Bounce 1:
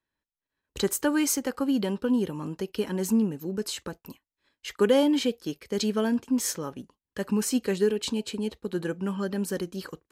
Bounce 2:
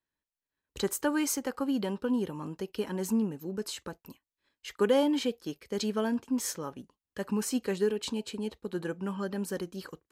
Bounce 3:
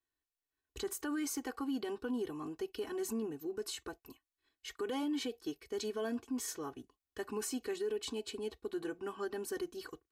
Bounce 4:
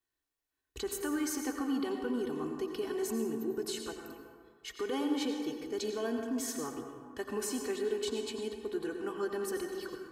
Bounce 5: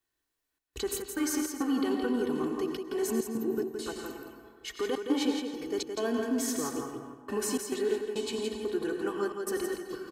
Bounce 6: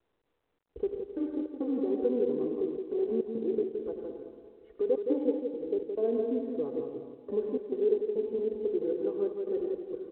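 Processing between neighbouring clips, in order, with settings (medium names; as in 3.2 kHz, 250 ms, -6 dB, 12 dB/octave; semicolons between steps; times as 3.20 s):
dynamic bell 930 Hz, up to +4 dB, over -42 dBFS, Q 1; trim -5 dB
comb 2.7 ms, depth 95%; peak limiter -24 dBFS, peak gain reduction 11.5 dB; trim -6 dB
plate-style reverb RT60 1.9 s, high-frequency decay 0.4×, pre-delay 75 ms, DRR 3.5 dB; trim +2 dB
trance gate "xxxx.xx.xx.xxxx" 103 bpm -60 dB; on a send: delay 168 ms -6 dB; on the sum: trim +4 dB
resonant low-pass 510 Hz, resonance Q 4.7; trim -5.5 dB; µ-law 64 kbps 8 kHz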